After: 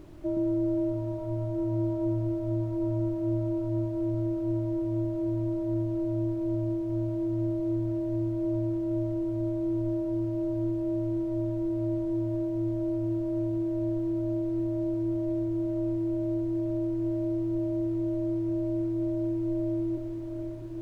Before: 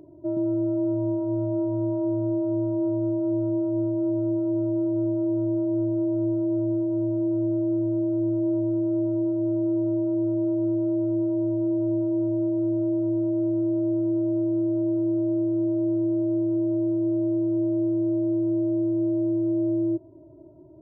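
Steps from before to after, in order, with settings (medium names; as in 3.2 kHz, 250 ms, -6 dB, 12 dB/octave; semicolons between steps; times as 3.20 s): echo that smears into a reverb 728 ms, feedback 62%, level -6 dB; added noise brown -44 dBFS; trim -2.5 dB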